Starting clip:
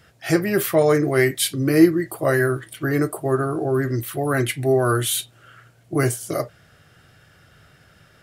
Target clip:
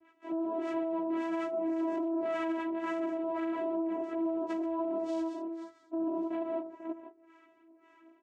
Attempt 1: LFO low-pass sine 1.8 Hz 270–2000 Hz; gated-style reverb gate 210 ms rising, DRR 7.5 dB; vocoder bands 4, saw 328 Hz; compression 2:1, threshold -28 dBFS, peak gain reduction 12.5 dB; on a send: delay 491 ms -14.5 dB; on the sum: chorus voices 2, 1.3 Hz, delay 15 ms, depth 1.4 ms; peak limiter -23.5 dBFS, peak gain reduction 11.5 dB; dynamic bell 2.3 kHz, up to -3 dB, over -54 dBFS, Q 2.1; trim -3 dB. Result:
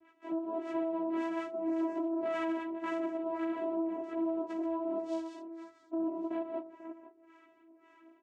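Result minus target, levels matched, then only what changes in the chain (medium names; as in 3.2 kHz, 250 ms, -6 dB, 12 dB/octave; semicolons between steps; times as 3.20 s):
compression: peak gain reduction +12.5 dB
remove: compression 2:1, threshold -28 dBFS, peak gain reduction 12.5 dB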